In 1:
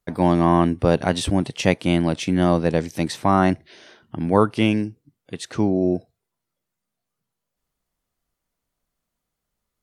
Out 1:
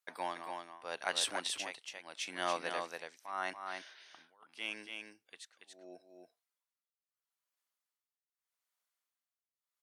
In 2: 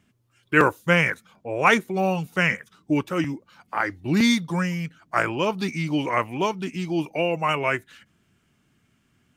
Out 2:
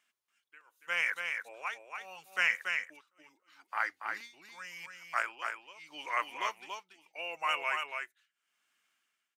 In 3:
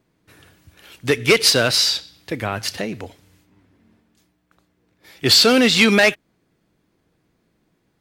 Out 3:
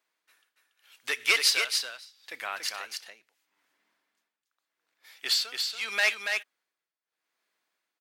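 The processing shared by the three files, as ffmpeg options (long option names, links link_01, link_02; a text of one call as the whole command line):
ffmpeg -i in.wav -filter_complex "[0:a]highpass=1100,tremolo=f=0.8:d=0.99,asplit=2[link_01][link_02];[link_02]aecho=0:1:283:0.562[link_03];[link_01][link_03]amix=inputs=2:normalize=0,volume=-5dB" out.wav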